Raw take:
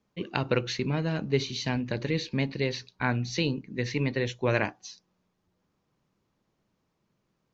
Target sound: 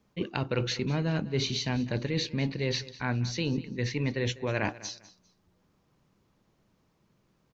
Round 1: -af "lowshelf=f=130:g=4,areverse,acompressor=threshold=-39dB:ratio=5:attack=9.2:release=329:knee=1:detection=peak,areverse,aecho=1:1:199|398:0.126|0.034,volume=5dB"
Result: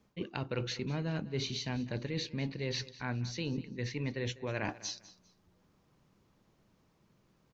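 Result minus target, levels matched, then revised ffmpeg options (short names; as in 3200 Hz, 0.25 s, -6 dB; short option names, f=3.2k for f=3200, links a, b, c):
compressor: peak gain reduction +6.5 dB
-af "lowshelf=f=130:g=4,areverse,acompressor=threshold=-31dB:ratio=5:attack=9.2:release=329:knee=1:detection=peak,areverse,aecho=1:1:199|398:0.126|0.034,volume=5dB"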